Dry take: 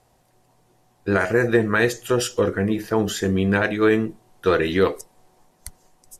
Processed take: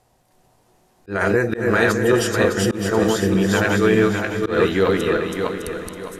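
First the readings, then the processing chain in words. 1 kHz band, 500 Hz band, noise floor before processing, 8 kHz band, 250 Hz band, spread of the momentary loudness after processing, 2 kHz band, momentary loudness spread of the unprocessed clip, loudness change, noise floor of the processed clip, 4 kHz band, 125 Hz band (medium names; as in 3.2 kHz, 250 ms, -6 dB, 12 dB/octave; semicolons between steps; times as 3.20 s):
+3.0 dB, +3.0 dB, -62 dBFS, +3.5 dB, +3.0 dB, 9 LU, +3.0 dB, 5 LU, +2.0 dB, -60 dBFS, +3.5 dB, +3.0 dB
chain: backward echo that repeats 304 ms, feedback 57%, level -1 dB; echo that smears into a reverb 453 ms, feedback 45%, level -13 dB; slow attack 159 ms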